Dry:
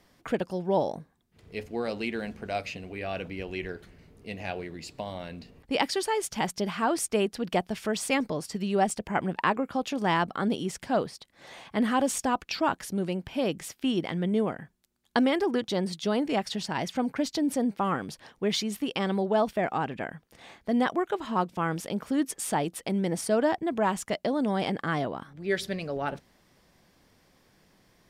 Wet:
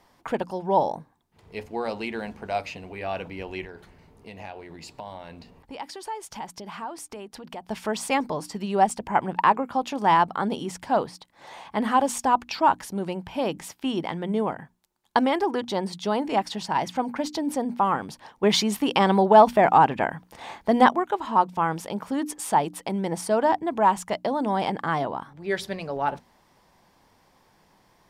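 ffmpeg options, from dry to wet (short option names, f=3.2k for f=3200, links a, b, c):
-filter_complex "[0:a]asettb=1/sr,asplit=3[a][b][c];[a]atrim=end=3.644[d];[b]atrim=start=3.64:end=7.66,asetpts=PTS-STARTPTS,afade=t=in:d=0.004:c=qsin,afade=t=out:st=4.016:d=0.004:c=qsin,acompressor=threshold=-37dB:ratio=6:attack=3.2:release=140:knee=1:detection=peak[e];[c]atrim=start=7.656[f];[d][e]acrossfade=d=0.004:c1=hsin:c2=qsin[g];[g][f]acrossfade=d=0.004:c1=qsin:c2=hsin,asettb=1/sr,asplit=3[h][i][j];[h]atrim=end=18.434[k];[i]atrim=start=18.43:end=20.89,asetpts=PTS-STARTPTS,afade=t=in:d=0.004:c=qsin,afade=t=out:st=2.456:d=0.004:c=qsin,acontrast=69[l];[j]atrim=start=20.886[m];[k][l]acrossfade=d=0.004:c1=hsin:c2=qsin[n];[n][m]acrossfade=d=0.004:c1=qsin:c2=hsin,equalizer=f=910:w=2.3:g=11,bandreject=f=60:t=h:w=6,bandreject=f=120:t=h:w=6,bandreject=f=180:t=h:w=6,bandreject=f=240:t=h:w=6,bandreject=f=300:t=h:w=6"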